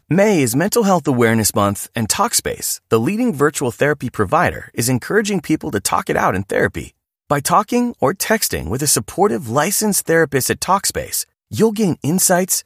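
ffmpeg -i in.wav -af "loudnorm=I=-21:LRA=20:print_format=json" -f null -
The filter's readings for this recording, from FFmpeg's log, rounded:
"input_i" : "-16.7",
"input_tp" : "-0.8",
"input_lra" : "1.9",
"input_thresh" : "-26.8",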